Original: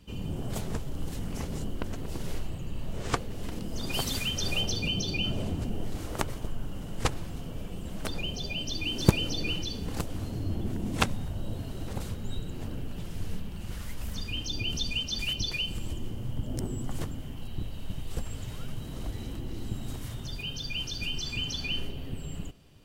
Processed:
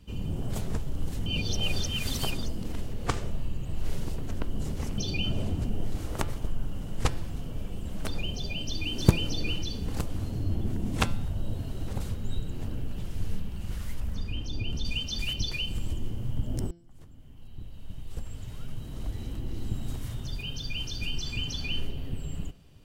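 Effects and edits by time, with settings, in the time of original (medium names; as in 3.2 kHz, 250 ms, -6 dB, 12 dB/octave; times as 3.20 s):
1.26–4.98 s: reverse
14.00–14.85 s: treble shelf 2.6 kHz -10 dB
16.71–19.64 s: fade in
whole clip: bass shelf 130 Hz +6.5 dB; de-hum 170.7 Hz, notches 33; trim -1.5 dB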